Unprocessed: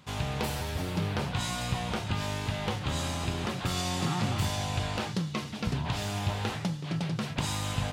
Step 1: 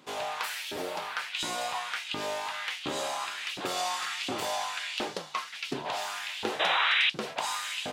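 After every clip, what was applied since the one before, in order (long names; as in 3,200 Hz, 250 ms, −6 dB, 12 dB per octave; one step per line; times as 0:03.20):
sound drawn into the spectrogram noise, 0:06.59–0:07.10, 300–4,000 Hz −28 dBFS
auto-filter high-pass saw up 1.4 Hz 300–3,200 Hz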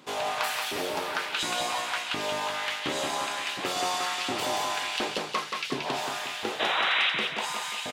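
speech leveller 2 s
repeating echo 178 ms, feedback 48%, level −4.5 dB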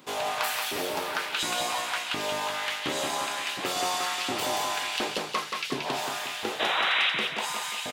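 high-shelf EQ 12,000 Hz +9.5 dB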